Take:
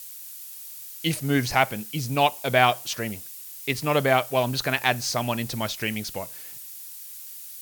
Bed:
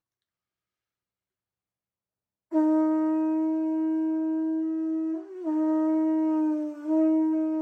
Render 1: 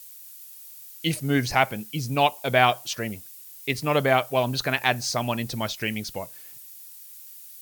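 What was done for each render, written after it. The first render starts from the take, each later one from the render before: noise reduction 6 dB, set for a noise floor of -41 dBFS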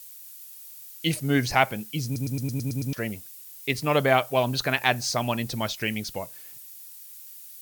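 2.05 s: stutter in place 0.11 s, 8 plays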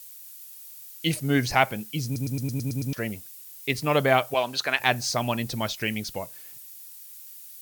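4.34–4.80 s: frequency weighting A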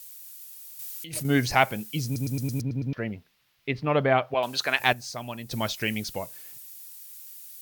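0.79–1.25 s: compressor with a negative ratio -35 dBFS; 2.61–4.43 s: distance through air 330 m; 4.93–5.51 s: gain -9.5 dB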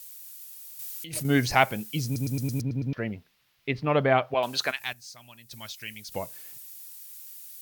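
4.71–6.12 s: amplifier tone stack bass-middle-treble 5-5-5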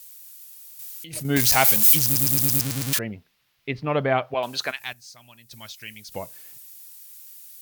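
1.36–2.99 s: zero-crossing glitches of -11 dBFS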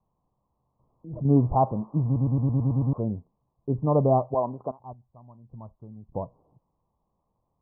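steep low-pass 1.1 kHz 96 dB/octave; bass shelf 210 Hz +8.5 dB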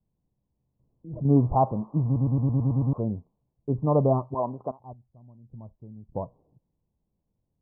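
4.13–4.39 s: time-frequency box 390–860 Hz -11 dB; level-controlled noise filter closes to 360 Hz, open at -20.5 dBFS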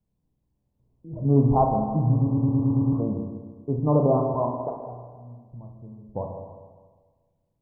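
spring tank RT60 1.5 s, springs 33/50 ms, chirp 50 ms, DRR 1.5 dB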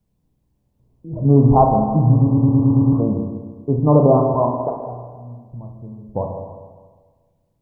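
trim +7.5 dB; peak limiter -2 dBFS, peak gain reduction 2.5 dB

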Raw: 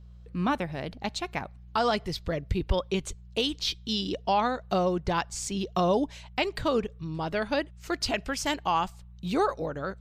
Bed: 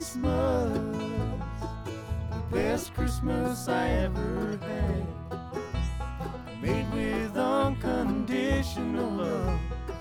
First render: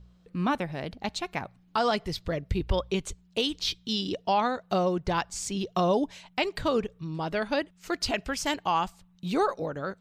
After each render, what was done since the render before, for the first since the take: de-hum 60 Hz, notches 2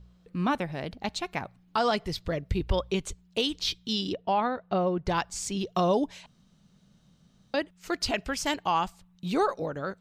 4.13–5.06 s: distance through air 290 m; 6.26–7.54 s: room tone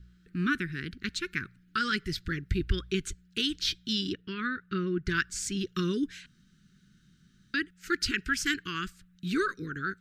Chebyshev band-stop 370–1400 Hz, order 3; peaking EQ 1.6 kHz +8.5 dB 0.59 oct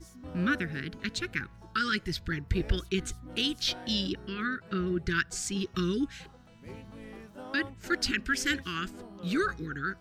add bed -17 dB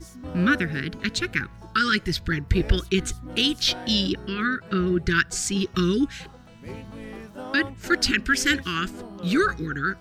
trim +7.5 dB

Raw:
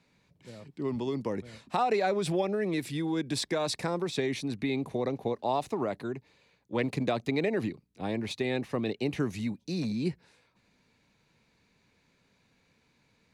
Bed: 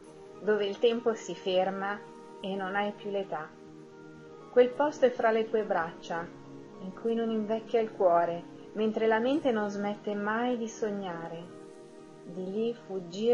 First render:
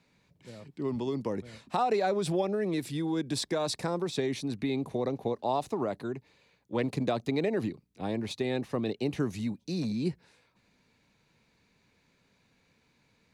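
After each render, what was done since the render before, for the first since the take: dynamic bell 2.2 kHz, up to -5 dB, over -50 dBFS, Q 1.6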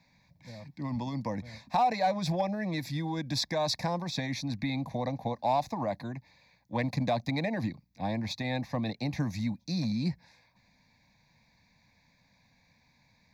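static phaser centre 2 kHz, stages 8; in parallel at -3 dB: overload inside the chain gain 27 dB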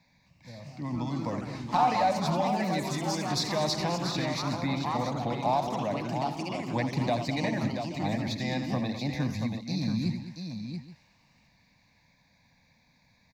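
multi-tap echo 85/207/682/827 ms -9.5/-12.5/-7/-18.5 dB; ever faster or slower copies 263 ms, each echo +3 st, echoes 3, each echo -6 dB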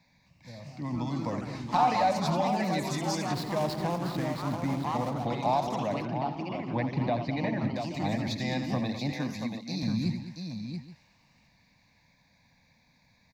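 3.33–5.27 s: median filter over 15 samples; 6.05–7.76 s: distance through air 260 m; 9.12–9.83 s: high-pass 190 Hz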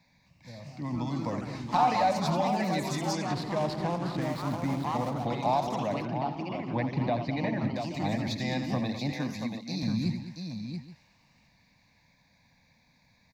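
3.13–4.22 s: distance through air 52 m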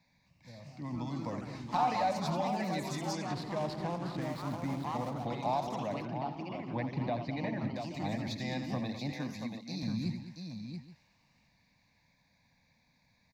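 trim -5.5 dB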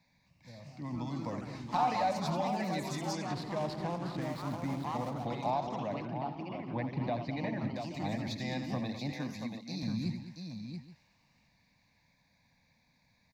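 5.50–7.03 s: distance through air 100 m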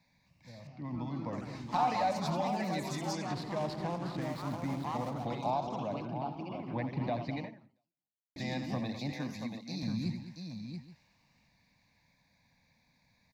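0.67–1.33 s: distance through air 200 m; 5.38–6.66 s: peaking EQ 1.9 kHz -15 dB 0.24 oct; 7.38–8.36 s: fade out exponential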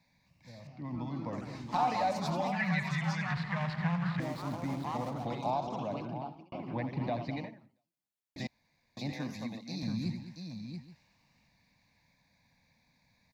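2.52–4.20 s: FFT filter 120 Hz 0 dB, 170 Hz +10 dB, 290 Hz -21 dB, 1.8 kHz +13 dB, 4.9 kHz -4 dB, 9.7 kHz -12 dB; 6.10–6.52 s: fade out; 8.47–8.97 s: room tone

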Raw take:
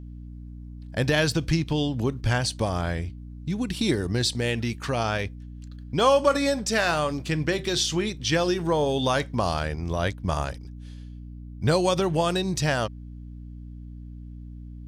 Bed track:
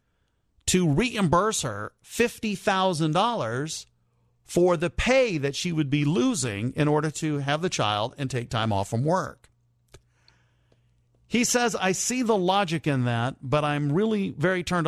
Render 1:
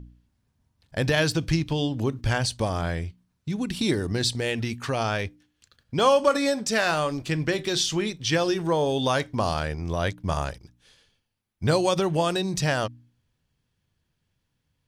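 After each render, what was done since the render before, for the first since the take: de-hum 60 Hz, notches 5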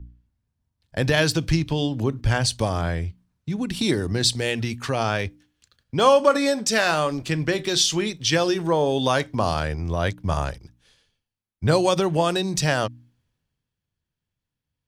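in parallel at +1 dB: compression, threshold -32 dBFS, peak gain reduction 16.5 dB; on the sum: three bands expanded up and down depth 40%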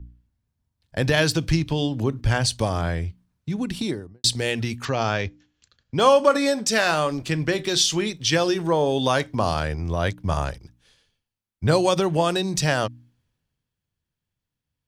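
3.62–4.24 s: studio fade out; 4.85–5.96 s: brick-wall FIR low-pass 7.7 kHz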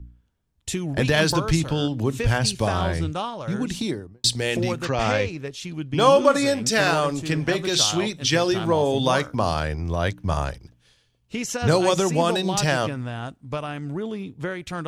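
add bed track -6 dB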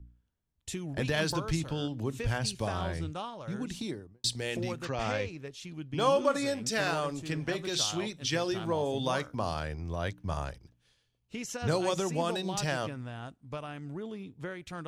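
trim -10 dB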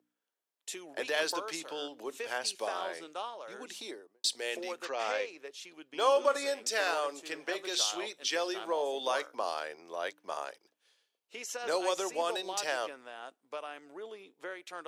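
high-pass 400 Hz 24 dB/octave; peaking EQ 12 kHz +2.5 dB 0.26 oct

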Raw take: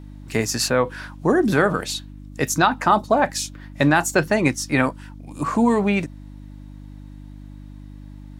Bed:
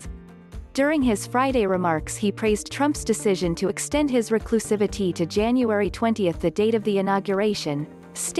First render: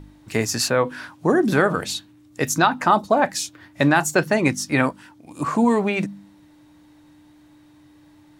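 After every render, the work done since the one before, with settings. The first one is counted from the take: de-hum 50 Hz, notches 5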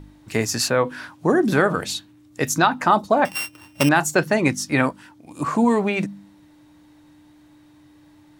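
3.25–3.89 s: sorted samples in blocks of 16 samples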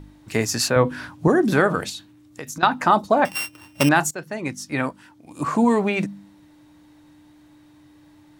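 0.76–1.28 s: bass shelf 230 Hz +11.5 dB; 1.89–2.63 s: compression 12:1, threshold -29 dBFS; 4.11–5.54 s: fade in, from -16.5 dB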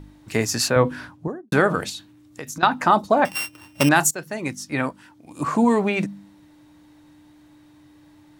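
0.86–1.52 s: studio fade out; 3.90–4.54 s: treble shelf 4.5 kHz -> 7.7 kHz +9 dB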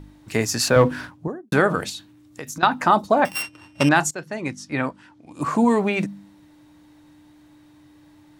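0.67–1.15 s: waveshaping leveller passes 1; 3.42–5.41 s: distance through air 61 m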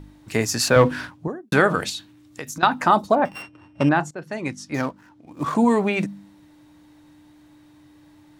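0.71–2.43 s: peaking EQ 3.2 kHz +3.5 dB 2.5 oct; 3.15–4.22 s: low-pass 1.1 kHz 6 dB/octave; 4.74–5.55 s: median filter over 15 samples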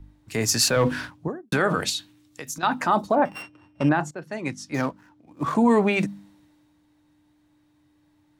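peak limiter -12 dBFS, peak gain reduction 9 dB; three bands expanded up and down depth 40%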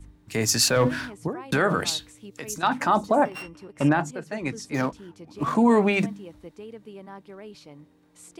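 add bed -20.5 dB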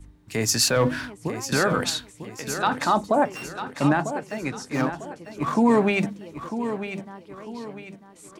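feedback delay 948 ms, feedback 38%, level -10 dB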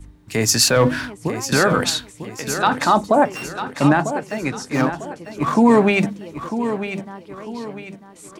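trim +5.5 dB; peak limiter -3 dBFS, peak gain reduction 1 dB

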